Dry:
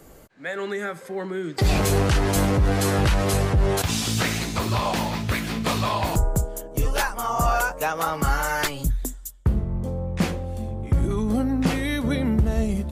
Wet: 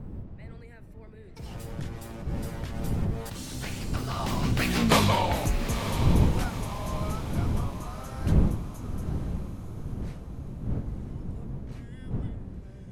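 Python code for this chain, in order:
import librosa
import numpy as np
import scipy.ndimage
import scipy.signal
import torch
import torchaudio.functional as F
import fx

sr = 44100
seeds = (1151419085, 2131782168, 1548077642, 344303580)

y = fx.doppler_pass(x, sr, speed_mps=47, closest_m=8.6, pass_at_s=4.89)
y = fx.dmg_wind(y, sr, seeds[0], corner_hz=140.0, level_db=-35.0)
y = fx.echo_diffused(y, sr, ms=931, feedback_pct=45, wet_db=-9.5)
y = F.gain(torch.from_numpy(y), 4.0).numpy()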